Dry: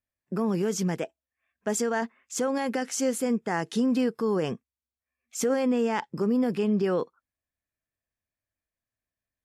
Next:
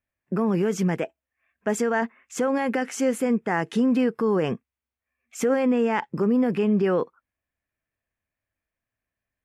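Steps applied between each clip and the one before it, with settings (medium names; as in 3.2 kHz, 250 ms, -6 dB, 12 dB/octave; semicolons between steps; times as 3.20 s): resonant high shelf 3.2 kHz -7.5 dB, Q 1.5; in parallel at -2 dB: peak limiter -22.5 dBFS, peak gain reduction 7.5 dB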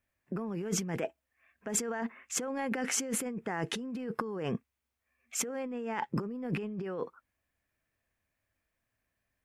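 compressor with a negative ratio -31 dBFS, ratio -1; trim -4 dB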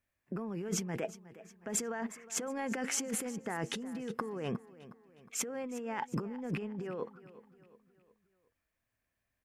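feedback delay 362 ms, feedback 46%, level -17 dB; trim -2.5 dB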